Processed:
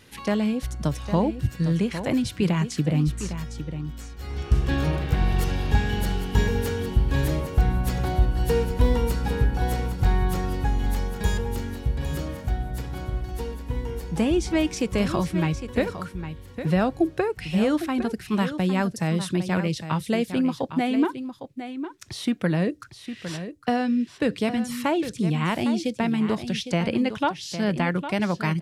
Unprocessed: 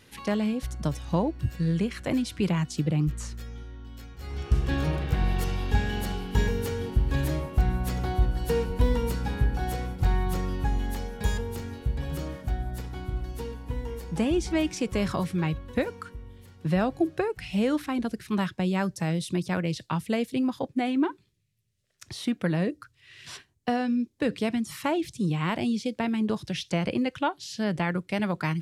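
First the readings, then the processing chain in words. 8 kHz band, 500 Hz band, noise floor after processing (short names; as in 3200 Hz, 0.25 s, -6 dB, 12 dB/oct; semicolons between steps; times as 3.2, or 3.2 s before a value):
+3.5 dB, +3.5 dB, -46 dBFS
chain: echo 0.807 s -10.5 dB; gain +3 dB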